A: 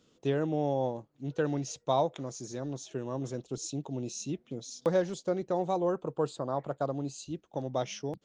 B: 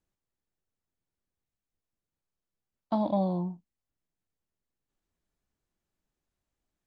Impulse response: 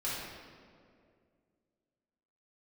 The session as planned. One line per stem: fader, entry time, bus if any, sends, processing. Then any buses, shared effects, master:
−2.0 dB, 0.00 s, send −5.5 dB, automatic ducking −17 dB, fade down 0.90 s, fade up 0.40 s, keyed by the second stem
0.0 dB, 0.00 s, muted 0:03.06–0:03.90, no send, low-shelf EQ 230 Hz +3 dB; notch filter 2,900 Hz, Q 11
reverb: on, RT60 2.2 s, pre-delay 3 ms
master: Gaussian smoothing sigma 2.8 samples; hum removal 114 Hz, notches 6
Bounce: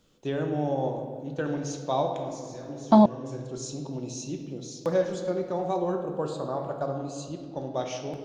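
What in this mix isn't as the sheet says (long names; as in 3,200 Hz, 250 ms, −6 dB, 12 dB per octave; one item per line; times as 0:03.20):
stem B 0.0 dB → +11.0 dB
master: missing Gaussian smoothing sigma 2.8 samples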